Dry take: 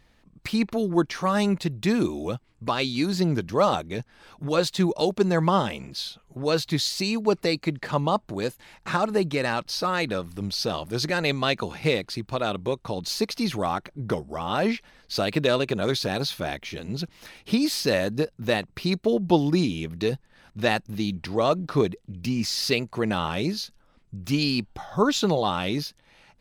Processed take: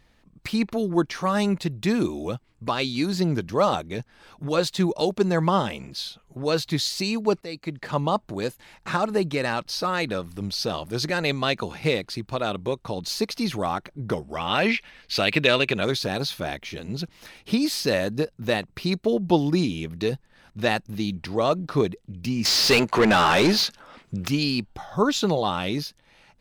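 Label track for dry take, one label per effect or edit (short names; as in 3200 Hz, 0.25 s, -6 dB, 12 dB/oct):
7.410000	8.000000	fade in, from -15.5 dB
14.220000	15.850000	bell 2500 Hz +11 dB 1.2 oct
22.450000	24.280000	overdrive pedal drive 27 dB, tone 3400 Hz, clips at -9 dBFS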